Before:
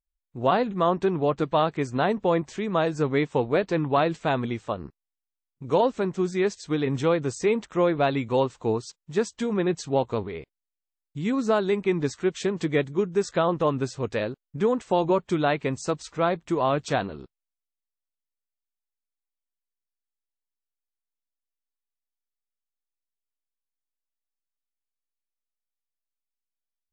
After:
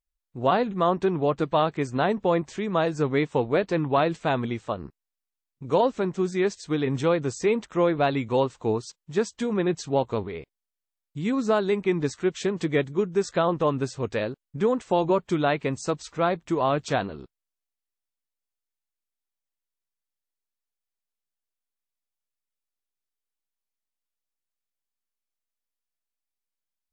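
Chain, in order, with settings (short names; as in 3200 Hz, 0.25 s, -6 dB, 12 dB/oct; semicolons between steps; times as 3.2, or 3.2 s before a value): wow and flutter 22 cents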